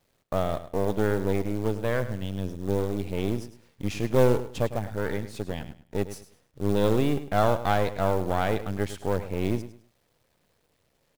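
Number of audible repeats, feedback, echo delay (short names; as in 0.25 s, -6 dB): 2, 26%, 0.104 s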